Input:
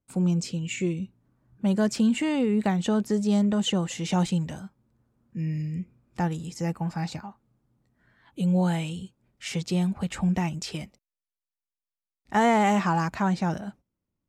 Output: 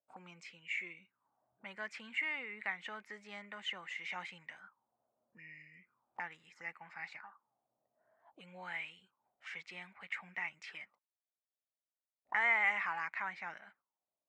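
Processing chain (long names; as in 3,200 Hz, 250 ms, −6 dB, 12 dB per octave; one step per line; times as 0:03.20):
parametric band 1,100 Hz +8 dB 1.8 octaves
envelope filter 620–2,100 Hz, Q 6.9, up, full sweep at −28 dBFS
level +1 dB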